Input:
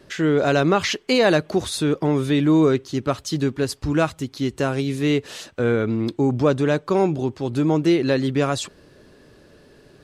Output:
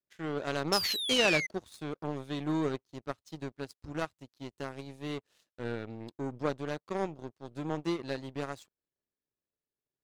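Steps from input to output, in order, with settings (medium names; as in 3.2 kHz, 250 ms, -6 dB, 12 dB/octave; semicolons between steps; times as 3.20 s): painted sound fall, 0.72–1.47 s, 2–5.4 kHz -17 dBFS; power-law waveshaper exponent 2; trim -6 dB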